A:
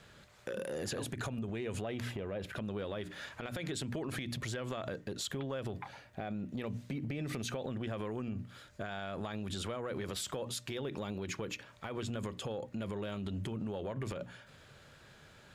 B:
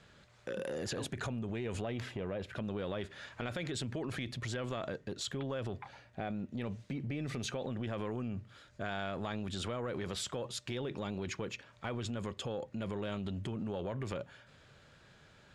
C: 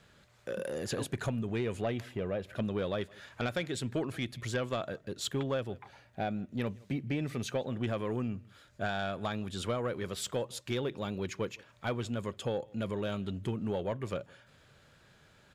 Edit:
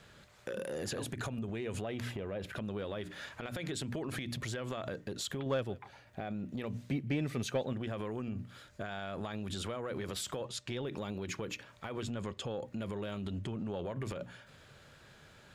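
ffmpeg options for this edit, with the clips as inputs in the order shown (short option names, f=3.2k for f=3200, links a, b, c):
-filter_complex "[2:a]asplit=2[a][b];[1:a]asplit=3[c][d][e];[0:a]asplit=6[f][g][h][i][j][k];[f]atrim=end=5.462[l];[a]atrim=start=5.458:end=6.072[m];[g]atrim=start=6.068:end=6.912[n];[b]atrim=start=6.908:end=7.732[o];[h]atrim=start=7.728:end=10.412[p];[c]atrim=start=10.408:end=10.862[q];[i]atrim=start=10.858:end=12.092[r];[d]atrim=start=12.088:end=12.612[s];[j]atrim=start=12.608:end=13.392[t];[e]atrim=start=13.388:end=13.852[u];[k]atrim=start=13.848[v];[l][m]acrossfade=d=0.004:c1=hsin:c2=hsin[w];[w][n]acrossfade=d=0.004:c1=hsin:c2=hsin[x];[x][o]acrossfade=d=0.004:c1=hsin:c2=hsin[y];[y][p]acrossfade=d=0.004:c1=hsin:c2=hsin[z];[z][q]acrossfade=d=0.004:c1=hsin:c2=hsin[aa];[aa][r]acrossfade=d=0.004:c1=hsin:c2=hsin[ab];[ab][s]acrossfade=d=0.004:c1=hsin:c2=hsin[ac];[ac][t]acrossfade=d=0.004:c1=hsin:c2=hsin[ad];[ad][u]acrossfade=d=0.004:c1=hsin:c2=hsin[ae];[ae][v]acrossfade=d=0.004:c1=hsin:c2=hsin"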